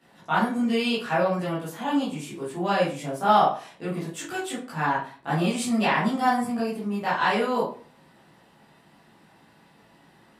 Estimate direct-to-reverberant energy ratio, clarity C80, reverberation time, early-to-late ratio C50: -10.5 dB, 11.0 dB, 0.40 s, 4.0 dB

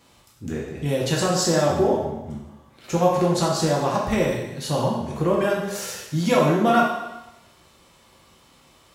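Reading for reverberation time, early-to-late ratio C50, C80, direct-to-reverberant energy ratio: 0.95 s, 2.0 dB, 5.0 dB, -3.5 dB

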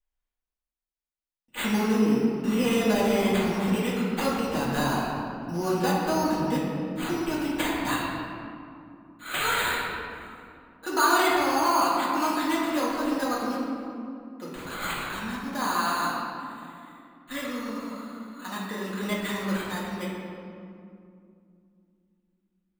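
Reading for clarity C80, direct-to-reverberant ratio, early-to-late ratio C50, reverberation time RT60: 0.5 dB, -7.5 dB, -1.5 dB, 2.5 s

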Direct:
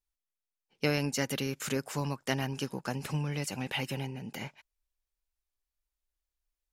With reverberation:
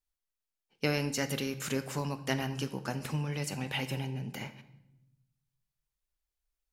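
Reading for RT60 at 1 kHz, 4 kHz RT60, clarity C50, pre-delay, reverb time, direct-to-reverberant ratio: 0.80 s, 0.75 s, 13.5 dB, 23 ms, 0.90 s, 10.0 dB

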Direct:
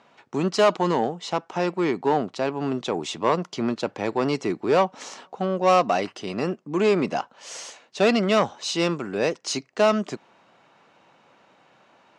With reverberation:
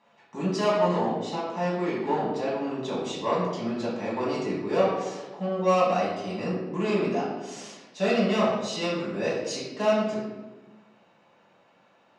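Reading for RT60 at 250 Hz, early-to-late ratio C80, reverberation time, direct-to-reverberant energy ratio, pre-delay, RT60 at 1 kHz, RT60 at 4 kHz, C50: 1.6 s, 4.0 dB, 1.2 s, -8.0 dB, 3 ms, 1.0 s, 0.70 s, 1.0 dB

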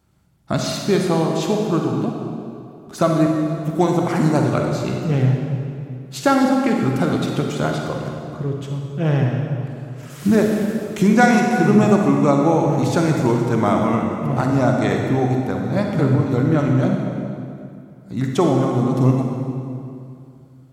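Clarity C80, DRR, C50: 3.0 dB, 1.0 dB, 1.5 dB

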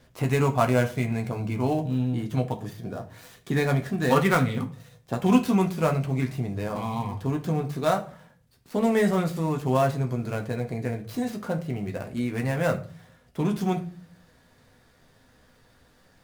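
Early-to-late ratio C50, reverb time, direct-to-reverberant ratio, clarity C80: 14.0 dB, 0.40 s, 3.0 dB, 19.0 dB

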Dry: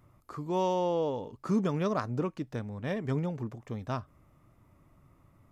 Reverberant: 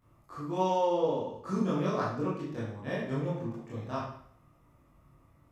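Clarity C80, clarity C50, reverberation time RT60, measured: 5.5 dB, 2.0 dB, 0.60 s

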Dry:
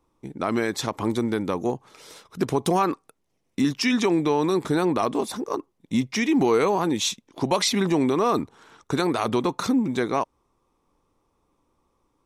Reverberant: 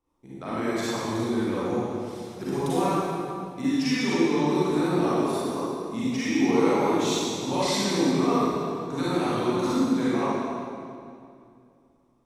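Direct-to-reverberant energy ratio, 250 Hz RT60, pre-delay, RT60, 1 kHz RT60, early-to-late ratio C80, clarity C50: -11.0 dB, 2.8 s, 35 ms, 2.4 s, 2.3 s, -3.5 dB, -7.5 dB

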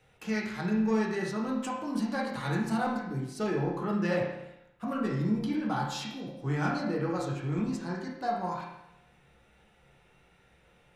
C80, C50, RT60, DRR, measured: 6.0 dB, 2.5 dB, 0.85 s, -4.0 dB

